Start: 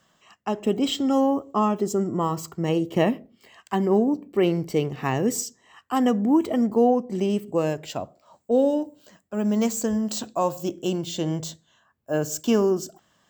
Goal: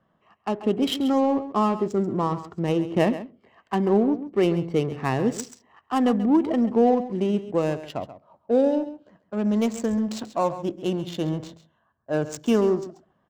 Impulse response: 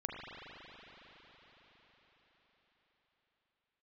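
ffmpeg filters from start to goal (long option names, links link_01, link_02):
-filter_complex "[0:a]adynamicsmooth=sensitivity=5:basefreq=1300,asplit=2[link_01][link_02];[link_02]aecho=0:1:135:0.211[link_03];[link_01][link_03]amix=inputs=2:normalize=0"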